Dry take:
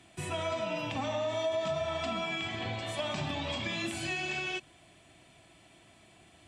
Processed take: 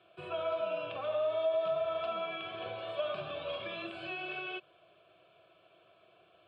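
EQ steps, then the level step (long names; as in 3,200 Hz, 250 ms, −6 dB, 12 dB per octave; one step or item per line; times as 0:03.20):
band-pass filter 400–3,000 Hz
spectral tilt −2.5 dB per octave
phaser with its sweep stopped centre 1,300 Hz, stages 8
+1.5 dB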